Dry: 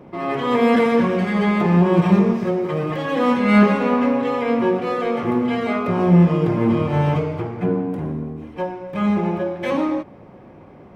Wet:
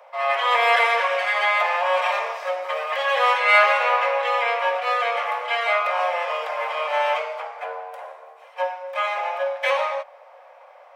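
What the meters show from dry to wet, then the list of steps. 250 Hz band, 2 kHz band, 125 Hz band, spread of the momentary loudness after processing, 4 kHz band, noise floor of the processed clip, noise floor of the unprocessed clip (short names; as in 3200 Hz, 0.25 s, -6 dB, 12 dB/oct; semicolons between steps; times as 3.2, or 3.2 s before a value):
under -40 dB, +7.0 dB, under -40 dB, 14 LU, +7.0 dB, -48 dBFS, -44 dBFS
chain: steep high-pass 540 Hz 72 dB/oct; dynamic EQ 2500 Hz, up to +6 dB, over -39 dBFS, Q 0.9; gain +2.5 dB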